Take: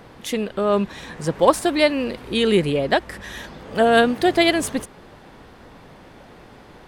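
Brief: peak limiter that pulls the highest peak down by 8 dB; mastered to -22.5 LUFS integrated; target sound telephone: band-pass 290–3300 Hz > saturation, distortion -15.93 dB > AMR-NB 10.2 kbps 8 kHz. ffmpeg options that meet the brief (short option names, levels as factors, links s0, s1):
-af "alimiter=limit=0.316:level=0:latency=1,highpass=290,lowpass=3300,asoftclip=threshold=0.168,volume=1.58" -ar 8000 -c:a libopencore_amrnb -b:a 10200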